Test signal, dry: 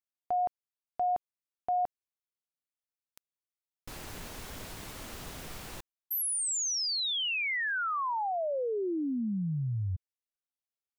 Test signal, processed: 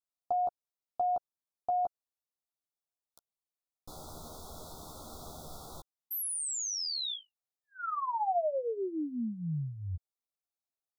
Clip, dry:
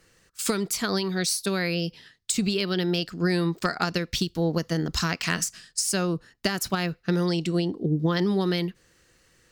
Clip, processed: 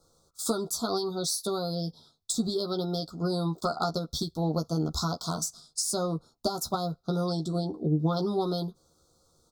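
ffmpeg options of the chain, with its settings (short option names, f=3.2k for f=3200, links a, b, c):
-filter_complex "[0:a]asuperstop=centerf=2200:order=20:qfactor=1.1,equalizer=f=710:t=o:w=0.63:g=6.5,asplit=2[a][b];[b]adelay=13,volume=-4.5dB[c];[a][c]amix=inputs=2:normalize=0,volume=-5dB"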